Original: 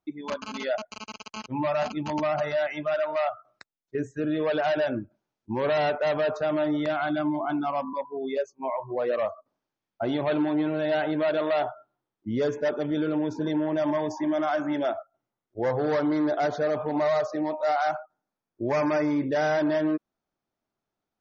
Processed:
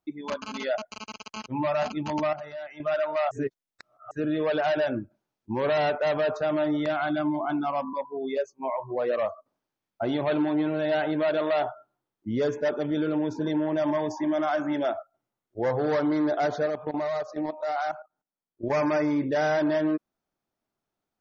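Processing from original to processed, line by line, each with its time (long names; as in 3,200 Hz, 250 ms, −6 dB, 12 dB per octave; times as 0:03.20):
0:02.33–0:02.80: clip gain −11.5 dB
0:03.31–0:04.11: reverse
0:16.66–0:18.70: output level in coarse steps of 14 dB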